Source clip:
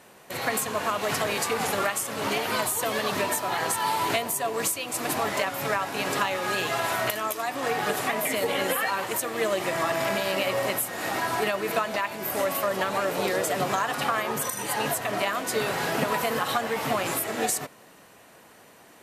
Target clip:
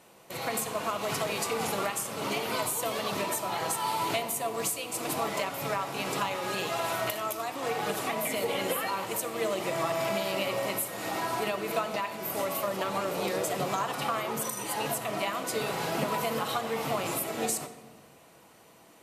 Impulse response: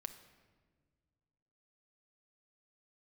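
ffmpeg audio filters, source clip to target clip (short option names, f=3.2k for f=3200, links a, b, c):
-filter_complex "[0:a]equalizer=f=1.7k:t=o:w=0.32:g=-8[a];[1:a]atrim=start_sample=2205[b];[a][b]afir=irnorm=-1:irlink=0"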